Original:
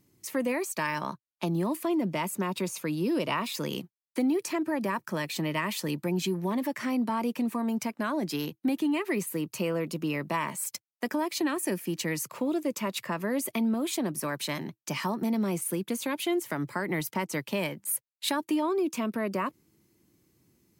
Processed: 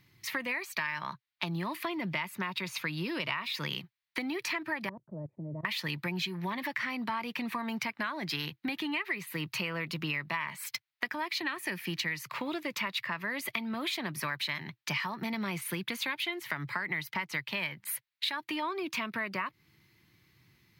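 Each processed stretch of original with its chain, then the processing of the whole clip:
0:04.89–0:05.65: Chebyshev low-pass filter 620 Hz, order 4 + output level in coarse steps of 19 dB
whole clip: graphic EQ with 10 bands 125 Hz +7 dB, 250 Hz −6 dB, 500 Hz −6 dB, 1,000 Hz +4 dB, 2,000 Hz +12 dB, 4,000 Hz +10 dB, 8,000 Hz −10 dB; downward compressor 6 to 1, threshold −31 dBFS

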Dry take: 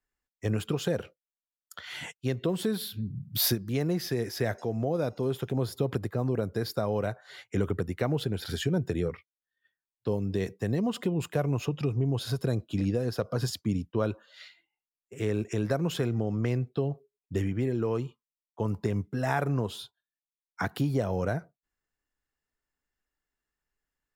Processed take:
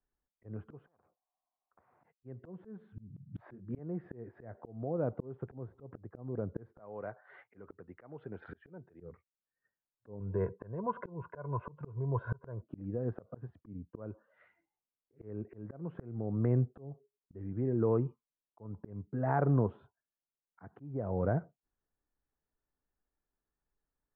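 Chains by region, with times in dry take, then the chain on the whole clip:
0:00.86–0:02.04: downward compressor 4 to 1, threshold −40 dBFS + formant resonators in series a + every bin compressed towards the loudest bin 4 to 1
0:03.16–0:03.79: double-tracking delay 22 ms −7 dB + multiband upward and downward compressor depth 70%
0:06.79–0:09.00: high-pass filter 45 Hz + spectral tilt +4 dB per octave
0:10.20–0:12.62: comb filter 1.9 ms, depth 63% + hollow resonant body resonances 990/1,400 Hz, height 16 dB, ringing for 25 ms
whole clip: Bessel low-pass filter 1,000 Hz, order 6; volume swells 583 ms; level +1 dB

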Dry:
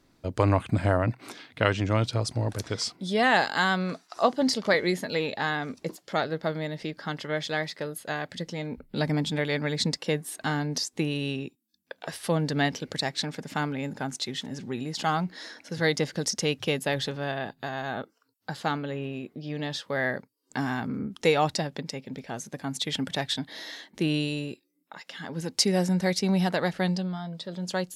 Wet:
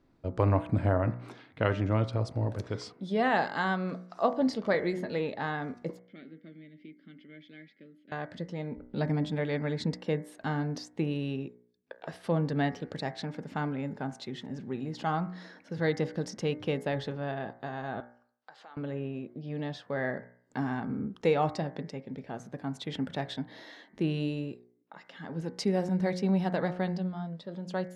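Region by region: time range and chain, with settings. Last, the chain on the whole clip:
0:05.99–0:08.12: formant filter i + comb filter 5.2 ms, depth 31%
0:18.00–0:18.77: downward compressor 10 to 1, threshold −38 dBFS + band-pass filter 680–8,000 Hz
whole clip: low-pass filter 1,100 Hz 6 dB per octave; hum removal 60.28 Hz, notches 37; level −1.5 dB

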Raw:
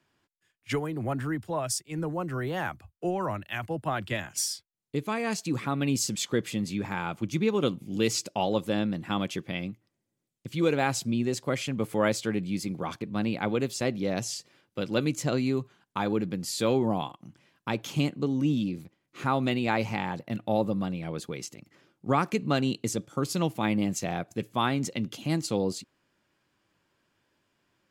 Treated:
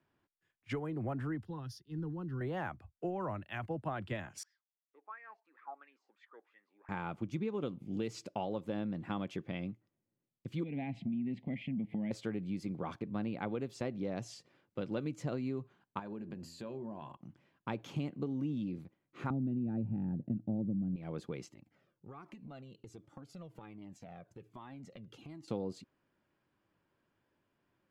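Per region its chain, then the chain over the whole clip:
0:01.45–0:02.41: parametric band 1,200 Hz −10.5 dB 1 octave + phaser with its sweep stopped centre 2,300 Hz, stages 6
0:04.43–0:06.89: high-pass filter 310 Hz 24 dB per octave + LFO wah 2.9 Hz 750–1,900 Hz, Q 11 + high-frequency loss of the air 69 metres
0:10.63–0:12.11: drawn EQ curve 130 Hz 0 dB, 200 Hz +7 dB, 370 Hz −13 dB, 860 Hz −11 dB, 1,400 Hz −30 dB, 2,000 Hz +5 dB, 3,200 Hz −1 dB, 6,100 Hz −25 dB + downward compressor 4 to 1, threshold −35 dBFS + hollow resonant body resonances 260/690 Hz, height 10 dB, ringing for 20 ms
0:15.99–0:17.17: EQ curve with evenly spaced ripples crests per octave 1.4, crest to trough 8 dB + downward compressor 8 to 1, threshold −35 dBFS + hum removal 83.75 Hz, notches 11
0:19.30–0:20.96: moving average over 41 samples + low shelf with overshoot 350 Hz +9.5 dB, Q 1.5
0:21.52–0:25.48: downward compressor 8 to 1, threshold −36 dBFS + flanger whose copies keep moving one way falling 1.3 Hz
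whole clip: low-pass filter 1,400 Hz 6 dB per octave; downward compressor, threshold −29 dBFS; level −4 dB

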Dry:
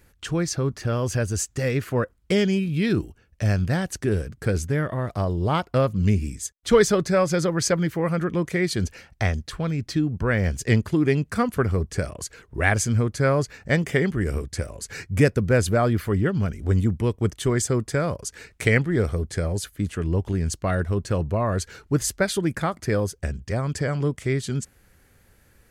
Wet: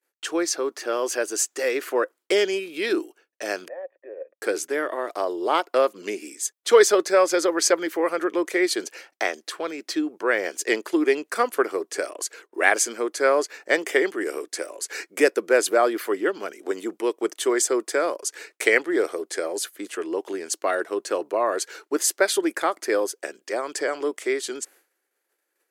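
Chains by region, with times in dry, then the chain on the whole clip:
0:03.68–0:04.42: flat-topped bell 810 Hz +12 dB 1.3 octaves + output level in coarse steps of 14 dB + formant resonators in series e
whole clip: downward expander −44 dBFS; elliptic high-pass filter 330 Hz, stop band 70 dB; high-shelf EQ 7,900 Hz +4 dB; level +3.5 dB

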